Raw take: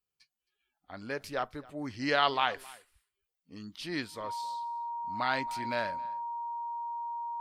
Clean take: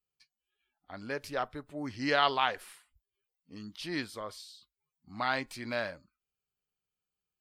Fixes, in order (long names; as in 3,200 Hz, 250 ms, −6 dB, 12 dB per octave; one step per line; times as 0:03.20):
notch filter 940 Hz, Q 30
echo removal 267 ms −22.5 dB